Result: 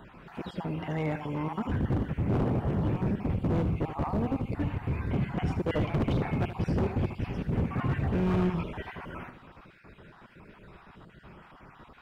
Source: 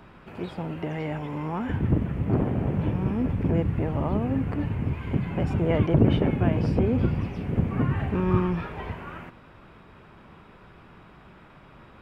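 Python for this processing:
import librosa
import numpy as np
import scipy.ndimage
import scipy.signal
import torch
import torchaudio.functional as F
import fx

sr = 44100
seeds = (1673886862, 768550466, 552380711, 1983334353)

y = fx.spec_dropout(x, sr, seeds[0], share_pct=35)
y = np.clip(10.0 ** (24.0 / 20.0) * y, -1.0, 1.0) / 10.0 ** (24.0 / 20.0)
y = fx.echo_feedback(y, sr, ms=77, feedback_pct=32, wet_db=-10.5)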